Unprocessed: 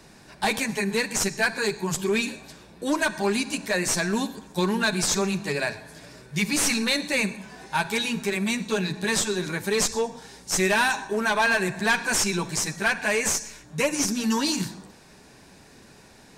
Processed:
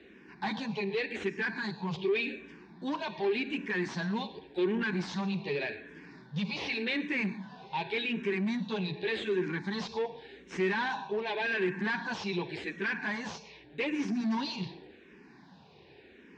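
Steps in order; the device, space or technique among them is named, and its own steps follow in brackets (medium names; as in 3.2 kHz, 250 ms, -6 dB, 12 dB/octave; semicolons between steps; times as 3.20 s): barber-pole phaser into a guitar amplifier (barber-pole phaser -0.87 Hz; saturation -25.5 dBFS, distortion -11 dB; cabinet simulation 100–3600 Hz, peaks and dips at 110 Hz -9 dB, 370 Hz +4 dB, 610 Hz -8 dB, 1.3 kHz -9 dB)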